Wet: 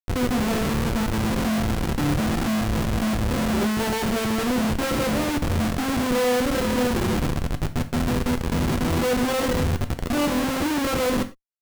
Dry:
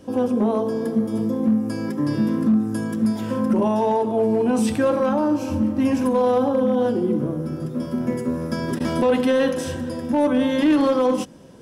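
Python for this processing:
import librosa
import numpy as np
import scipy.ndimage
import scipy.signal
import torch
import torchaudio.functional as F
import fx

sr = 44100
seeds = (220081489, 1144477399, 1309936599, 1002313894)

y = fx.schmitt(x, sr, flips_db=-22.0)
y = fx.rev_gated(y, sr, seeds[0], gate_ms=130, shape='falling', drr_db=8.0)
y = y * librosa.db_to_amplitude(-2.0)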